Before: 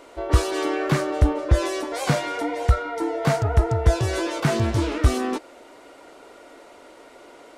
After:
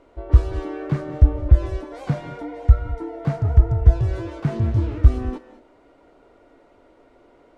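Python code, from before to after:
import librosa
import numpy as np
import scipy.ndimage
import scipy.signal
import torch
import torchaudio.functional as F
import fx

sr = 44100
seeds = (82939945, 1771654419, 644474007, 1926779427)

y = fx.riaa(x, sr, side='playback')
y = fx.rev_gated(y, sr, seeds[0], gate_ms=240, shape='rising', drr_db=12.0)
y = F.gain(torch.from_numpy(y), -10.0).numpy()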